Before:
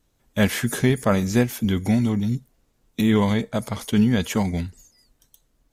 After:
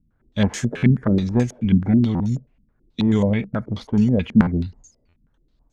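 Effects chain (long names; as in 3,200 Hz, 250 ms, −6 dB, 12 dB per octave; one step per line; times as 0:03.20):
low-shelf EQ 320 Hz +10 dB
buffer that repeats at 0:00.77/0:02.14/0:04.41/0:05.08, samples 512, times 4
low-pass on a step sequencer 9.3 Hz 210–6,700 Hz
level −6.5 dB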